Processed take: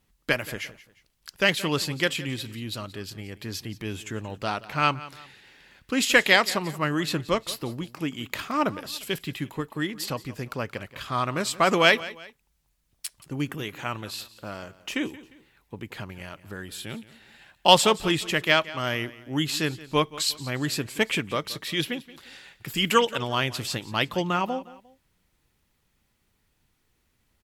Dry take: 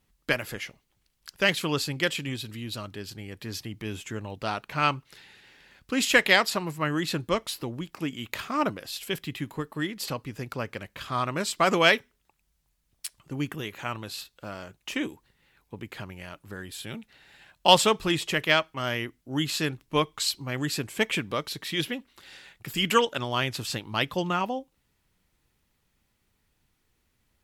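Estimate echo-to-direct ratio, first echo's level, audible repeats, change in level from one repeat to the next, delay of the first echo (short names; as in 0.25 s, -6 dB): -17.5 dB, -18.0 dB, 2, -8.5 dB, 0.176 s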